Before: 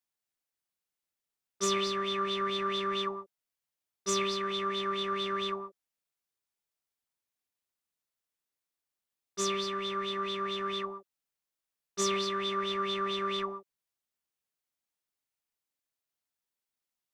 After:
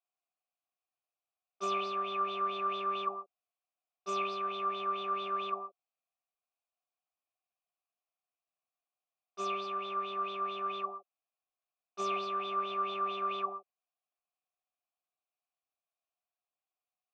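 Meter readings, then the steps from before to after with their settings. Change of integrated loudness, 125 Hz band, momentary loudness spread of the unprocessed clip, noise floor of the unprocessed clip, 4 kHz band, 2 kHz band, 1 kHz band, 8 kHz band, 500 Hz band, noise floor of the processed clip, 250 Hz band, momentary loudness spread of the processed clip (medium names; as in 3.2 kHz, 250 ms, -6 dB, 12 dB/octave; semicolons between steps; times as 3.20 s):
-3.0 dB, no reading, 10 LU, under -85 dBFS, -10.5 dB, -6.0 dB, +1.0 dB, -18.5 dB, -6.5 dB, under -85 dBFS, -9.5 dB, 8 LU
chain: dynamic bell 180 Hz, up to +5 dB, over -46 dBFS, Q 0.7; vowel filter a; trim +9 dB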